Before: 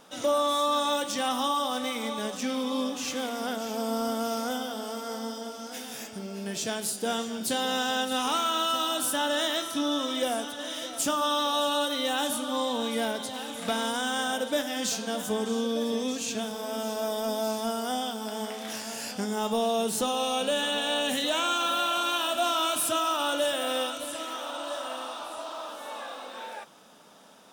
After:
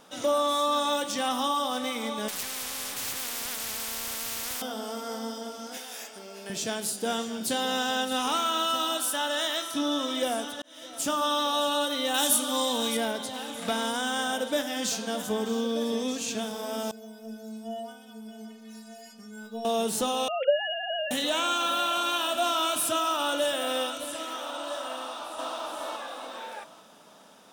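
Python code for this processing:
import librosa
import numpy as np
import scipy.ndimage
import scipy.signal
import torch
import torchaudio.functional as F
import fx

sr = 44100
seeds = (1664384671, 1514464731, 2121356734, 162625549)

y = fx.spectral_comp(x, sr, ratio=10.0, at=(2.28, 4.62))
y = fx.highpass(y, sr, hz=460.0, slope=12, at=(5.77, 6.5))
y = fx.low_shelf(y, sr, hz=320.0, db=-11.5, at=(8.97, 9.74))
y = fx.high_shelf(y, sr, hz=4200.0, db=12.0, at=(12.14, 12.97))
y = fx.resample_linear(y, sr, factor=2, at=(15.22, 15.76))
y = fx.stiff_resonator(y, sr, f0_hz=220.0, decay_s=0.49, stiffness=0.008, at=(16.91, 19.65))
y = fx.sine_speech(y, sr, at=(20.28, 21.11))
y = fx.echo_throw(y, sr, start_s=24.96, length_s=0.58, ms=420, feedback_pct=40, wet_db=-0.5)
y = fx.edit(y, sr, fx.fade_in_span(start_s=10.62, length_s=0.53), tone=tone)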